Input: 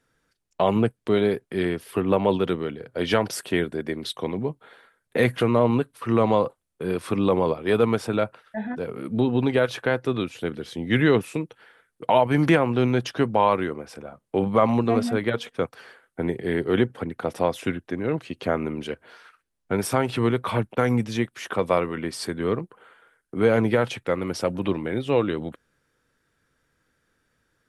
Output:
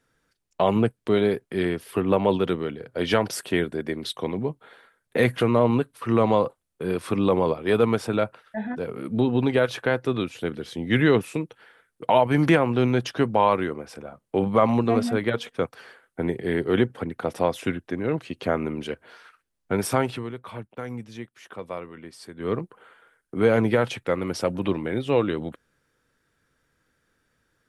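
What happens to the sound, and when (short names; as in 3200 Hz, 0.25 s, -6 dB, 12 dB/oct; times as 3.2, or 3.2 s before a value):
20.03–22.56 dip -12.5 dB, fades 0.21 s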